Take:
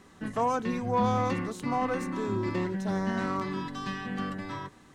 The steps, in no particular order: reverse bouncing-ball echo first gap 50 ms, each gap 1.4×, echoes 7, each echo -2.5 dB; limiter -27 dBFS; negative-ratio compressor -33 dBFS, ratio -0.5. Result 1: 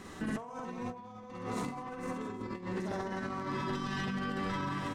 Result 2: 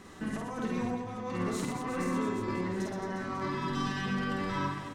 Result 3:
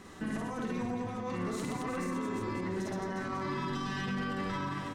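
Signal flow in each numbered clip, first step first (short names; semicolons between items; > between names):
reverse bouncing-ball echo > negative-ratio compressor > limiter; negative-ratio compressor > limiter > reverse bouncing-ball echo; negative-ratio compressor > reverse bouncing-ball echo > limiter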